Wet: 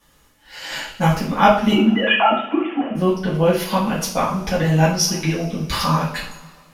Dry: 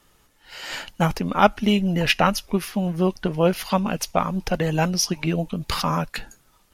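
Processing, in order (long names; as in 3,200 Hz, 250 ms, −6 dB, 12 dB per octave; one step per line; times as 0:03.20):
0:01.72–0:02.95: three sine waves on the formant tracks
coupled-rooms reverb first 0.44 s, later 2 s, from −19 dB, DRR −9 dB
level −5.5 dB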